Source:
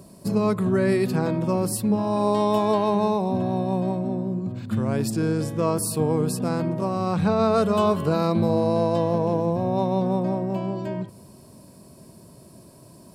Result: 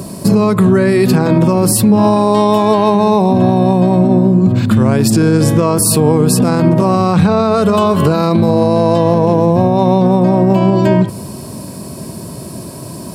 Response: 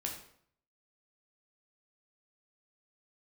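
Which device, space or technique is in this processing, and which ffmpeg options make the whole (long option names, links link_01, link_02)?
mastering chain: -af "highpass=57,equalizer=frequency=580:width_type=o:width=0.77:gain=-2,acompressor=threshold=-25dB:ratio=6,alimiter=level_in=22dB:limit=-1dB:release=50:level=0:latency=1,volume=-1dB"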